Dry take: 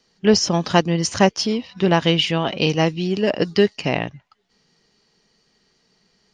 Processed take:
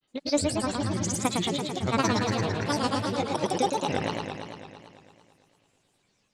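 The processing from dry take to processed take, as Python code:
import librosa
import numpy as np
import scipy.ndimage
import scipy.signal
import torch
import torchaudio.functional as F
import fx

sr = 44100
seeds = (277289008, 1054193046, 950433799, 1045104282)

y = fx.granulator(x, sr, seeds[0], grain_ms=100.0, per_s=20.0, spray_ms=100.0, spread_st=12)
y = fx.echo_warbled(y, sr, ms=112, feedback_pct=72, rate_hz=2.8, cents=167, wet_db=-4)
y = y * librosa.db_to_amplitude(-9.0)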